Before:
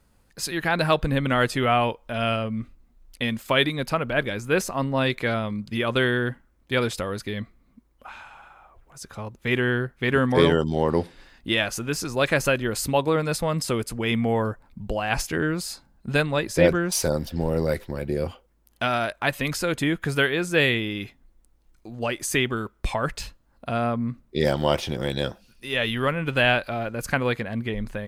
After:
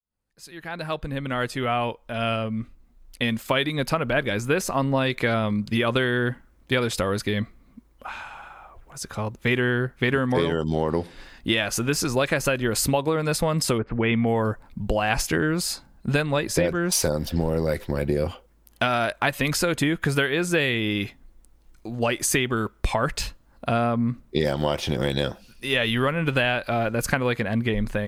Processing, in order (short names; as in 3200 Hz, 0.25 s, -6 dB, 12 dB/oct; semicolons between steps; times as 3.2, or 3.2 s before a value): opening faded in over 4.79 s; 13.77–14.25 LPF 1600 Hz -> 3800 Hz 24 dB/oct; compressor 12:1, threshold -24 dBFS, peak gain reduction 13 dB; gain +6 dB